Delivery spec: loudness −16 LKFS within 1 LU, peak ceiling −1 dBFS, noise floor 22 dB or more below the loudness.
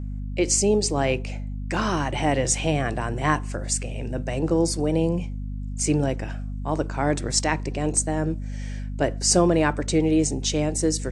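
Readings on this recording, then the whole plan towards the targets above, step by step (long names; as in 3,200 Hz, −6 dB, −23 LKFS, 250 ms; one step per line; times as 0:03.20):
mains hum 50 Hz; hum harmonics up to 250 Hz; level of the hum −28 dBFS; integrated loudness −24.0 LKFS; sample peak −5.5 dBFS; target loudness −16.0 LKFS
→ mains-hum notches 50/100/150/200/250 Hz
level +8 dB
brickwall limiter −1 dBFS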